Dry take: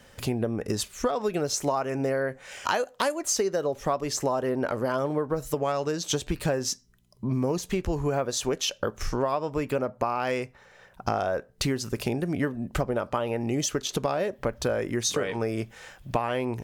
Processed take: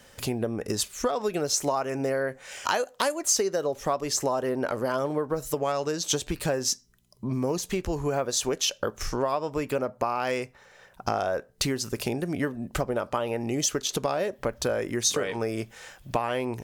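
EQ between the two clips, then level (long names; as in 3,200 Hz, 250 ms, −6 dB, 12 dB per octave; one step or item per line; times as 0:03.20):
bass and treble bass −3 dB, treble +4 dB
0.0 dB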